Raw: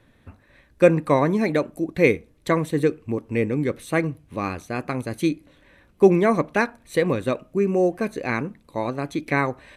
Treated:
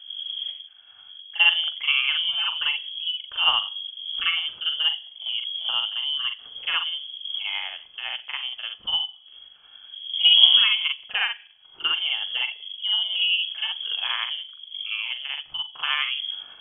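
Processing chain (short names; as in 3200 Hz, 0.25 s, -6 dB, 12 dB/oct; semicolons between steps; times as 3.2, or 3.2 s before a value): wind noise 80 Hz -28 dBFS; inverted band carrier 3300 Hz; granular stretch 1.7×, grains 0.199 s; gain -3.5 dB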